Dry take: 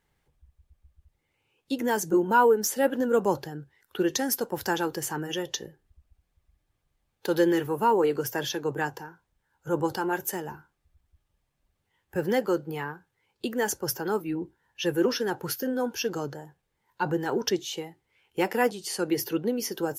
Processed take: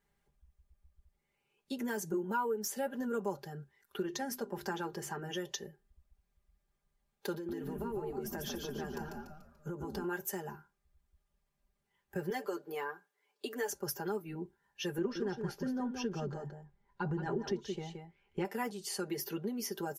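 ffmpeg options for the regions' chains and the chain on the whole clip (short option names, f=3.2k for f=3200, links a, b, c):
-filter_complex "[0:a]asettb=1/sr,asplit=3[a][b][c];[a]atrim=end=4.024[d];[b]atrim=start=4.02:end=5.35,asetpts=PTS-STARTPTS,afade=t=in:d=0.004:c=qsin,afade=t=out:st=1.326:d=0.004:c=qsin,aemphasis=mode=reproduction:type=cd,bandreject=f=50:t=h:w=6,bandreject=f=100:t=h:w=6,bandreject=f=150:t=h:w=6,bandreject=f=200:t=h:w=6,bandreject=f=250:t=h:w=6,bandreject=f=300:t=h:w=6,bandreject=f=350:t=h:w=6,bandreject=f=400:t=h:w=6[e];[c]atrim=start=5.346[f];[d][e]acrossfade=d=0.004:c1=hsin:c2=qsin[g];[g][f]acrossfade=d=0.004:c1=qsin:c2=hsin,asettb=1/sr,asplit=3[h][i][j];[h]atrim=end=7.344[k];[i]atrim=start=7.34:end=10.04,asetpts=PTS-STARTPTS,afade=t=in:d=0.004:c=qsin,afade=t=out:st=2.696:d=0.004:c=qsin,equalizer=f=260:w=0.72:g=10.5,acompressor=threshold=-30dB:ratio=10:attack=3.2:release=140:knee=1:detection=peak,asplit=7[l][m][n][o][p][q][r];[m]adelay=145,afreqshift=-76,volume=-4dB[s];[n]adelay=290,afreqshift=-152,volume=-11.1dB[t];[o]adelay=435,afreqshift=-228,volume=-18.3dB[u];[p]adelay=580,afreqshift=-304,volume=-25.4dB[v];[q]adelay=725,afreqshift=-380,volume=-32.5dB[w];[r]adelay=870,afreqshift=-456,volume=-39.7dB[x];[l][s][t][u][v][w][x]amix=inputs=7:normalize=0,atrim=end_sample=119070[y];[j]atrim=start=10.036[z];[k][y]acrossfade=d=0.004:c1=hsin:c2=qsin[aa];[aa][z]acrossfade=d=0.004:c1=qsin:c2=hsin,asettb=1/sr,asplit=3[ab][ac][ad];[ab]atrim=end=12.304[ae];[ac]atrim=start=12.3:end=13.7,asetpts=PTS-STARTPTS,afade=t=in:d=0.004:c=qsin,afade=t=out:st=1.396:d=0.004:c=qsin,highpass=f=280:w=0.5412,highpass=f=280:w=1.3066,aecho=1:1:6.8:0.61,atrim=end_sample=61740[af];[ad]atrim=start=13.696[ag];[ae][af]acrossfade=d=0.004:c1=hsin:c2=qsin[ah];[ah][ag]acrossfade=d=0.004:c1=qsin:c2=hsin,asettb=1/sr,asplit=3[ai][aj][ak];[ai]atrim=end=14.984[al];[aj]atrim=start=14.98:end=18.45,asetpts=PTS-STARTPTS,afade=t=in:d=0.004:c=qsin,afade=t=out:st=3.466:d=0.004:c=qsin,lowpass=11k,aemphasis=mode=reproduction:type=bsi,aecho=1:1:173:0.398,atrim=end_sample=153027[am];[ak]atrim=start=18.446[an];[al][am]acrossfade=d=0.004:c1=hsin:c2=qsin[ao];[ao][an]acrossfade=d=0.004:c1=qsin:c2=hsin,equalizer=f=3.2k:w=1.5:g=-2.5,aecho=1:1:5:0.81,acompressor=threshold=-28dB:ratio=2.5,volume=-7dB"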